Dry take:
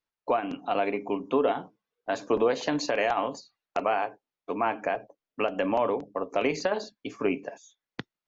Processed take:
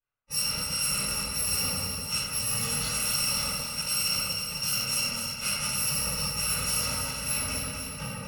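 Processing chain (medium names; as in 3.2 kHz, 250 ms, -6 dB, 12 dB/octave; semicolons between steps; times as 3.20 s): bit-reversed sample order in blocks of 128 samples; level-controlled noise filter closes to 1.8 kHz, open at -21.5 dBFS; reverberation RT60 1.9 s, pre-delay 3 ms, DRR -20 dB; reverse; compression, threshold -17 dBFS, peak gain reduction 13 dB; reverse; bass shelf 480 Hz -8.5 dB; on a send: echo whose repeats swap between lows and highs 125 ms, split 2.3 kHz, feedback 80%, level -3.5 dB; on the sum: trim -9 dB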